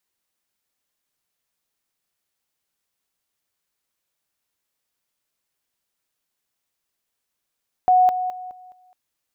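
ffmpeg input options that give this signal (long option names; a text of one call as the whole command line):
ffmpeg -f lavfi -i "aevalsrc='pow(10,(-11.5-10*floor(t/0.21))/20)*sin(2*PI*735*t)':duration=1.05:sample_rate=44100" out.wav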